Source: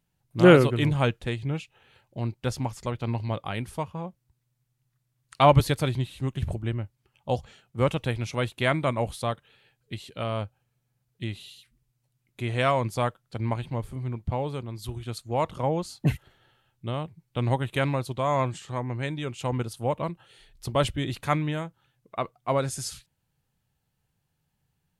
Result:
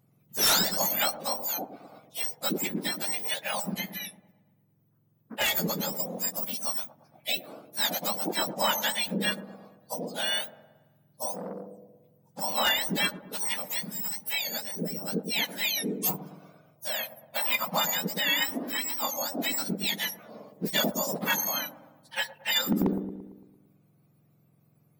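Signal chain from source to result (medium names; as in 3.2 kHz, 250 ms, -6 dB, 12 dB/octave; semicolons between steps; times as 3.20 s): spectrum inverted on a logarithmic axis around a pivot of 1.4 kHz; 17.00–17.78 s: fifteen-band graphic EQ 1 kHz +7 dB, 2.5 kHz +5 dB, 6.3 kHz -9 dB; in parallel at +2 dB: compression 16:1, threshold -36 dBFS, peak gain reduction 22 dB; on the sum: wavefolder -16.5 dBFS; 3.74–6.00 s: feedback comb 110 Hz, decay 0.16 s, harmonics all, mix 50%; on a send: feedback echo behind a low-pass 113 ms, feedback 53%, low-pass 620 Hz, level -6.5 dB; 11.32–12.43 s: on the sum: transformer saturation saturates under 910 Hz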